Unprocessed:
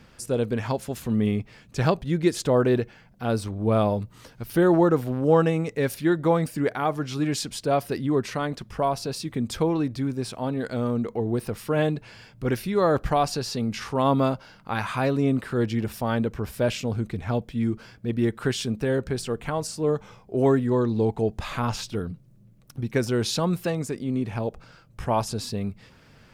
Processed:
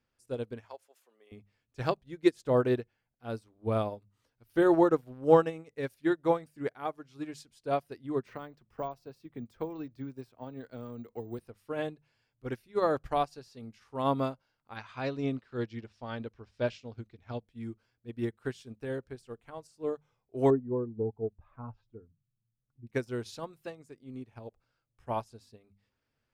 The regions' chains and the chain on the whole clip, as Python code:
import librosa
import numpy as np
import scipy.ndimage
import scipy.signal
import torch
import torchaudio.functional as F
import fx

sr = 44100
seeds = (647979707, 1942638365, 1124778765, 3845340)

y = fx.chain(x, sr, fx.highpass(hz=450.0, slope=24),
    fx.peak_eq(hz=3900.0, db=-3.5, octaves=0.22), at=(0.65, 1.32))
y = fx.chain(y, sr, fx.high_shelf(hz=3000.0, db=-6.0),
    fx.resample_bad(factor=2, down='none', up='hold'),
    fx.band_squash(depth_pct=70), at=(8.26, 11.39))
y = fx.chain(y, sr, fx.lowpass(hz=5700.0, slope=24),
    fx.high_shelf(hz=2900.0, db=7.5), at=(14.76, 17.42))
y = fx.chain(y, sr, fx.spec_expand(power=1.5),
    fx.lowpass(hz=1300.0, slope=12), at=(20.5, 22.87))
y = fx.peak_eq(y, sr, hz=180.0, db=-14.0, octaves=0.23)
y = fx.hum_notches(y, sr, base_hz=50, count=4)
y = fx.upward_expand(y, sr, threshold_db=-34.0, expansion=2.5)